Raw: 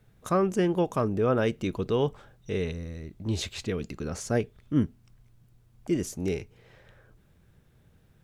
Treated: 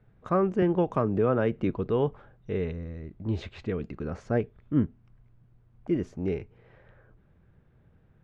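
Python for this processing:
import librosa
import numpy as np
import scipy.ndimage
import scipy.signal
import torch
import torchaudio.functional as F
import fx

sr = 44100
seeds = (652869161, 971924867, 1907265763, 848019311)

y = scipy.signal.sosfilt(scipy.signal.butter(2, 1900.0, 'lowpass', fs=sr, output='sos'), x)
y = fx.band_squash(y, sr, depth_pct=70, at=(0.62, 1.7))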